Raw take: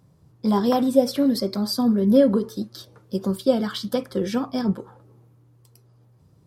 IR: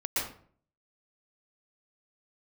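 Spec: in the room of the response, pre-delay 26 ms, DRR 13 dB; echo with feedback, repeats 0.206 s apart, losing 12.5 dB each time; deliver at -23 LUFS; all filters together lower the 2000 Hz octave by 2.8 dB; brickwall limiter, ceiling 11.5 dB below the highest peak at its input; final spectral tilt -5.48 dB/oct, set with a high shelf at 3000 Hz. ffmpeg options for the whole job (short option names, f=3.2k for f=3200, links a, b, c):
-filter_complex "[0:a]equalizer=f=2k:t=o:g=-5.5,highshelf=f=3k:g=5,alimiter=limit=-16dB:level=0:latency=1,aecho=1:1:206|412|618:0.237|0.0569|0.0137,asplit=2[a][b];[1:a]atrim=start_sample=2205,adelay=26[c];[b][c]afir=irnorm=-1:irlink=0,volume=-20.5dB[d];[a][d]amix=inputs=2:normalize=0,volume=2dB"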